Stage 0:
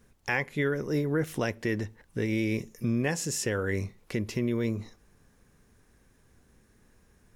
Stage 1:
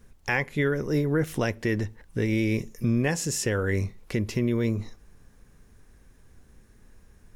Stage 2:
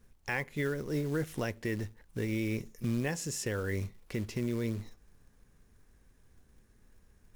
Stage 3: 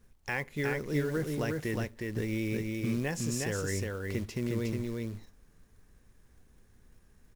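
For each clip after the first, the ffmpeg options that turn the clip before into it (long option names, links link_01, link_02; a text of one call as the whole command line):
ffmpeg -i in.wav -af "lowshelf=frequency=63:gain=11,volume=2.5dB" out.wav
ffmpeg -i in.wav -af "acrusher=bits=5:mode=log:mix=0:aa=0.000001,volume=-8dB" out.wav
ffmpeg -i in.wav -af "aecho=1:1:361:0.708" out.wav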